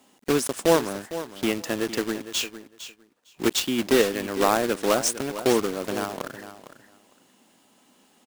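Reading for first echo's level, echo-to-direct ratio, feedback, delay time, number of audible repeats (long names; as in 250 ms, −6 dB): −13.0 dB, −13.0 dB, 15%, 456 ms, 2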